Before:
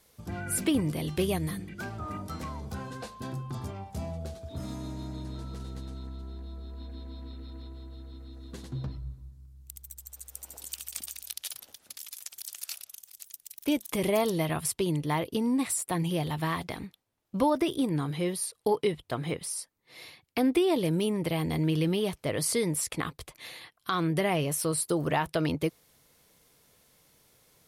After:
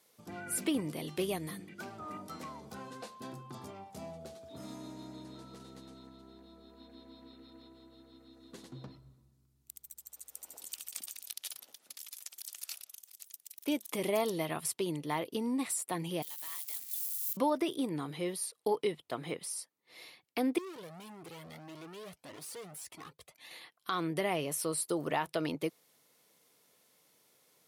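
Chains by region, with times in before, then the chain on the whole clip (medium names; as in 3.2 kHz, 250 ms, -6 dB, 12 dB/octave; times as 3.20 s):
16.22–17.37 s: zero-crossing glitches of -28 dBFS + differentiator
20.58–23.51 s: bass shelf 72 Hz +9 dB + overload inside the chain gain 35 dB + Shepard-style flanger rising 1.7 Hz
whole clip: high-pass 220 Hz 12 dB/octave; band-stop 1.6 kHz, Q 24; trim -4.5 dB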